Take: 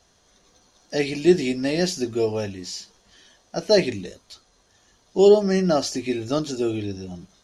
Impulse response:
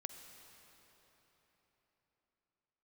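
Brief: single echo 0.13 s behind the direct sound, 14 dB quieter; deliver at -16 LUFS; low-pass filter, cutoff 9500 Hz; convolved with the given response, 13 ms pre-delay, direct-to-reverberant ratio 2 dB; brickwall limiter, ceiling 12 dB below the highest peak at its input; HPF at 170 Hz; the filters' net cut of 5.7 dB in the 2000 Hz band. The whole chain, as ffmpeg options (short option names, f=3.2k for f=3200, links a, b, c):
-filter_complex "[0:a]highpass=170,lowpass=9.5k,equalizer=f=2k:t=o:g=-7,alimiter=limit=-17dB:level=0:latency=1,aecho=1:1:130:0.2,asplit=2[a][b];[1:a]atrim=start_sample=2205,adelay=13[c];[b][c]afir=irnorm=-1:irlink=0,volume=1dB[d];[a][d]amix=inputs=2:normalize=0,volume=10.5dB"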